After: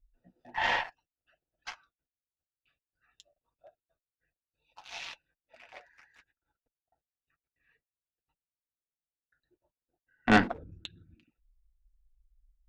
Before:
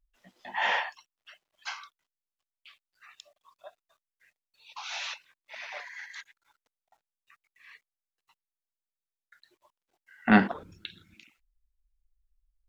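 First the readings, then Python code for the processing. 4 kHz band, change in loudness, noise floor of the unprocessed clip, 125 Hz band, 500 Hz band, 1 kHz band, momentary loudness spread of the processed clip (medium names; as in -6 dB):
-2.0 dB, +0.5 dB, under -85 dBFS, -3.0 dB, 0.0 dB, -1.0 dB, 22 LU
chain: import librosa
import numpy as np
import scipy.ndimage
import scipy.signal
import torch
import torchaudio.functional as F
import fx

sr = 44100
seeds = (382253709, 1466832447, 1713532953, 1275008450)

y = fx.wiener(x, sr, points=41)
y = fx.low_shelf(y, sr, hz=85.0, db=11.5)
y = fx.notch_comb(y, sr, f0_hz=200.0)
y = fx.cheby_harmonics(y, sr, harmonics=(4,), levels_db=(-14,), full_scale_db=-8.5)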